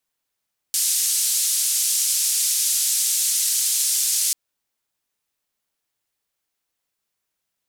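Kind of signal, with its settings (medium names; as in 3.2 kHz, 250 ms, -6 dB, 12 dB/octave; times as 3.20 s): noise band 6–10 kHz, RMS -21 dBFS 3.59 s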